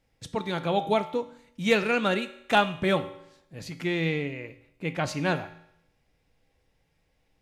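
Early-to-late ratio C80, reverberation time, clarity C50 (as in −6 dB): 16.0 dB, 0.75 s, 13.5 dB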